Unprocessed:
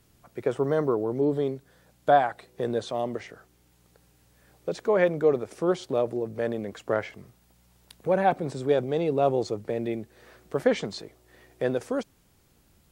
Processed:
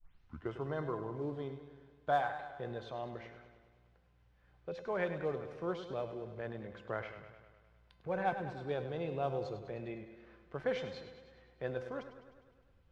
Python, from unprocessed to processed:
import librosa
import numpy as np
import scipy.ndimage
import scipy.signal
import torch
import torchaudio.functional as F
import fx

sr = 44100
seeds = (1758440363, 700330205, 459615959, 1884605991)

y = fx.tape_start_head(x, sr, length_s=0.55)
y = fx.graphic_eq(y, sr, hz=(125, 250, 500, 1000, 2000, 4000, 8000), db=(-3, -11, -10, -4, -5, -4, -10))
y = fx.quant_float(y, sr, bits=4)
y = fx.comb_fb(y, sr, f0_hz=510.0, decay_s=0.59, harmonics='all', damping=0.0, mix_pct=80)
y = fx.env_lowpass(y, sr, base_hz=2600.0, full_db=-30.0)
y = fx.echo_warbled(y, sr, ms=102, feedback_pct=64, rate_hz=2.8, cents=58, wet_db=-11.0)
y = F.gain(torch.from_numpy(y), 10.5).numpy()